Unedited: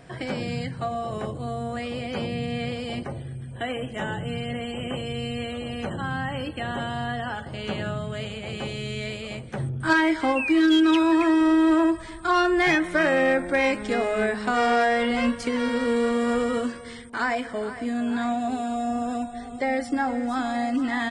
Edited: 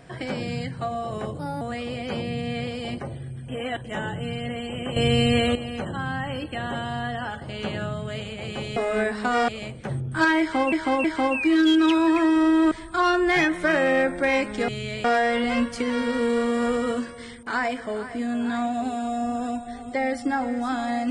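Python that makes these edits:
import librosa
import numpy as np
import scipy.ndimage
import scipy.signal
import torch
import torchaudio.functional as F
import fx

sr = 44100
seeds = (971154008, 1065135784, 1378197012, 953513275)

y = fx.edit(x, sr, fx.speed_span(start_s=1.39, length_s=0.27, speed=1.21),
    fx.reverse_span(start_s=3.53, length_s=0.36),
    fx.clip_gain(start_s=5.01, length_s=0.59, db=10.5),
    fx.swap(start_s=8.81, length_s=0.36, other_s=13.99, other_length_s=0.72),
    fx.repeat(start_s=10.09, length_s=0.32, count=3),
    fx.cut(start_s=11.76, length_s=0.26), tone=tone)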